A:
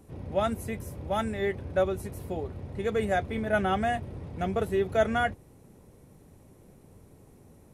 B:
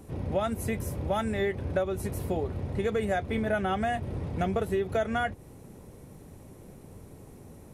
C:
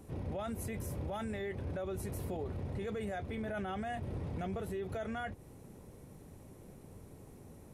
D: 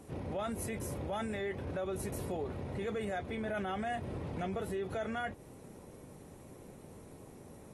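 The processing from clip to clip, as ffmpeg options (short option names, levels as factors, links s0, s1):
-af "acompressor=threshold=0.0282:ratio=6,volume=2"
-af "alimiter=level_in=1.33:limit=0.0631:level=0:latency=1:release=14,volume=0.75,volume=0.562"
-af "lowshelf=f=110:g=-10,volume=1.41" -ar 32000 -c:a aac -b:a 32k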